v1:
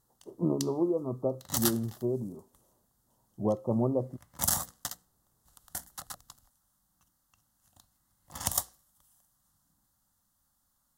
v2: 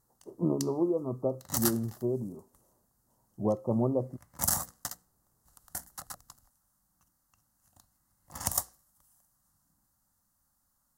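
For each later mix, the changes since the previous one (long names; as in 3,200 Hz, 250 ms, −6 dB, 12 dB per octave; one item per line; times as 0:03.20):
background: add parametric band 3,400 Hz −10 dB 0.49 octaves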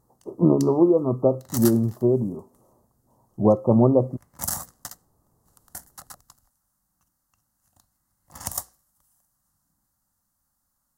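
speech +11.0 dB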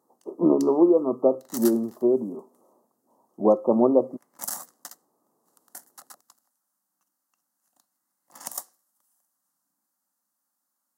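background −4.0 dB
master: add high-pass filter 240 Hz 24 dB per octave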